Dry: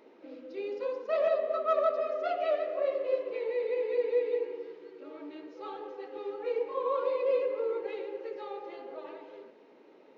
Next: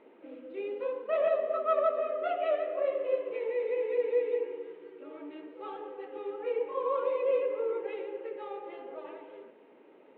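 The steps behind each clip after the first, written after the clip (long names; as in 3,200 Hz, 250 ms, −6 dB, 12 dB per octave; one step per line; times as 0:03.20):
Butterworth low-pass 3,400 Hz 48 dB per octave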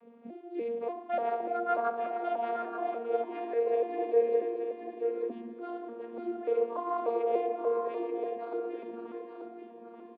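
vocoder with an arpeggio as carrier bare fifth, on A#3, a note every 294 ms
on a send: single-tap delay 883 ms −6.5 dB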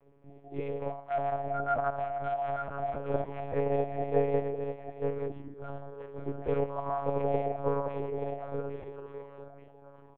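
one-pitch LPC vocoder at 8 kHz 140 Hz
noise reduction from a noise print of the clip's start 6 dB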